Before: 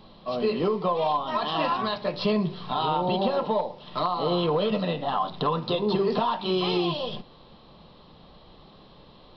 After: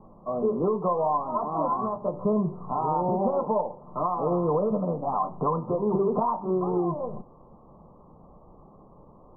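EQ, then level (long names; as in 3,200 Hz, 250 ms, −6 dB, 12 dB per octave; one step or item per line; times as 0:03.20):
Butterworth low-pass 1,200 Hz 72 dB per octave
0.0 dB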